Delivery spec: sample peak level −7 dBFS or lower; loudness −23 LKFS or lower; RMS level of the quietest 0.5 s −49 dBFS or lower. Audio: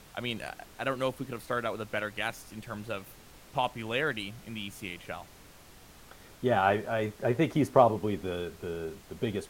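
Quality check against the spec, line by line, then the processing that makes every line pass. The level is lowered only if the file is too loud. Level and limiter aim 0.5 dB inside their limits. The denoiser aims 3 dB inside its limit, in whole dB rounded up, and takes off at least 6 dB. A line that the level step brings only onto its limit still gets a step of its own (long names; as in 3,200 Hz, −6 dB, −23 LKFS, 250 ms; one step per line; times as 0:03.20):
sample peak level −8.0 dBFS: in spec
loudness −31.5 LKFS: in spec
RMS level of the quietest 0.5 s −53 dBFS: in spec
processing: no processing needed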